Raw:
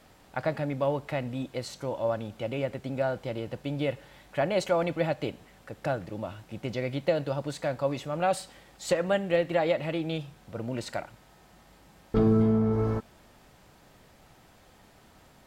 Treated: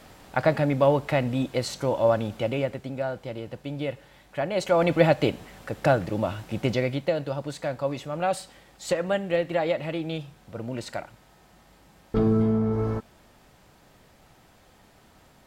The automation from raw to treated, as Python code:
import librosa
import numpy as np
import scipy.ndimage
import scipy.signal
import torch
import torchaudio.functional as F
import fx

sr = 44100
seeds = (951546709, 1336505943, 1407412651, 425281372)

y = fx.gain(x, sr, db=fx.line((2.35, 7.5), (2.97, -1.0), (4.51, -1.0), (4.95, 9.0), (6.67, 9.0), (7.1, 0.5)))